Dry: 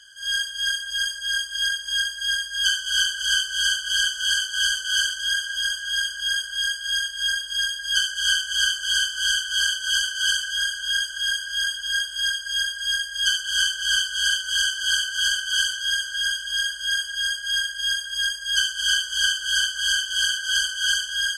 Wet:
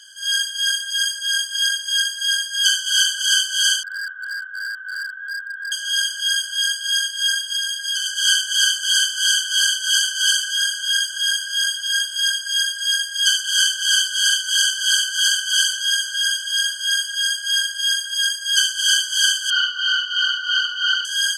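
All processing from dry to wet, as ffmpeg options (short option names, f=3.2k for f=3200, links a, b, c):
-filter_complex "[0:a]asettb=1/sr,asplit=3[a][b][c];[a]atrim=end=3.834[d];[b]atrim=start=3.83:end=5.72,asetpts=PTS-STARTPTS,afade=t=in:d=0.004:c=qsin,afade=t=out:st=1.886:d=0.004:c=qsin,asuperpass=centerf=1400:order=8:qfactor=1.7,asoftclip=type=hard:threshold=-27dB[e];[c]atrim=start=5.716[f];[d][e]acrossfade=d=0.004:c1=hsin:c2=qsin[g];[g][f]acrossfade=d=0.004:c1=qsin:c2=hsin,asettb=1/sr,asplit=3[h][i][j];[h]atrim=end=7.564[k];[i]atrim=start=7.56:end=8.06,asetpts=PTS-STARTPTS,afade=t=in:d=0.004:c=qsin,afade=t=out:st=0.496:d=0.004:c=qsin,highpass=f=500:p=1,acompressor=threshold=-24dB:ratio=5:attack=3.2:release=140:knee=1:detection=peak[l];[j]atrim=start=8.056[m];[k][l]acrossfade=d=0.004:c1=hsin:c2=qsin[n];[n][m]acrossfade=d=0.004:c1=qsin:c2=hsin,asettb=1/sr,asplit=3[o][p][q];[o]atrim=end=19.504[r];[p]atrim=start=19.5:end=21.05,asetpts=PTS-STARTPTS,afade=t=in:d=0.004:c=qsin,afade=t=out:st=1.546:d=0.004:c=qsin,afreqshift=-77,acrusher=bits=8:mode=log:mix=0:aa=0.000001,highpass=110,equalizer=f=130:t=q:w=4:g=10,equalizer=f=200:t=q:w=4:g=-5,equalizer=f=290:t=q:w=4:g=-10,equalizer=f=830:t=q:w=4:g=-7,equalizer=f=1.2k:t=q:w=4:g=9,lowpass=f=3.9k:w=0.5412,lowpass=f=3.9k:w=1.3066[s];[q]atrim=start=21.046[t];[r][s]acrossfade=d=0.004:c1=hsin:c2=qsin[u];[u][t]acrossfade=d=0.004:c1=qsin:c2=hsin,highpass=f=160:p=1,highshelf=f=3.3k:g=9"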